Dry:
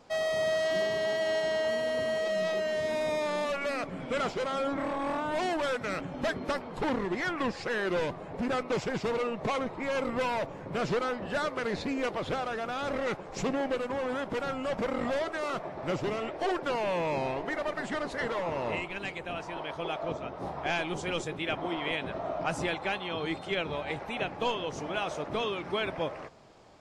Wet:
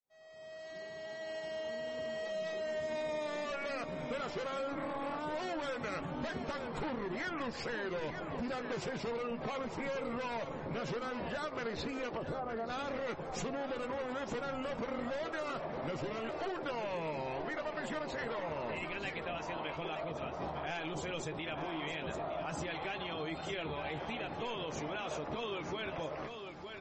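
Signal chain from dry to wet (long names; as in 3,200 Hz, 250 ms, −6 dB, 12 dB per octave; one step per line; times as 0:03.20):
fade in at the beginning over 5.81 s
0:12.17–0:12.70: low-pass filter 1,000 Hz 12 dB per octave
brickwall limiter −28 dBFS, peak gain reduction 10 dB
double-tracking delay 13 ms −9 dB
single-tap delay 910 ms −10 dB
downward compressor 4 to 1, threshold −35 dBFS, peak gain reduction 5.5 dB
MP3 32 kbit/s 44,100 Hz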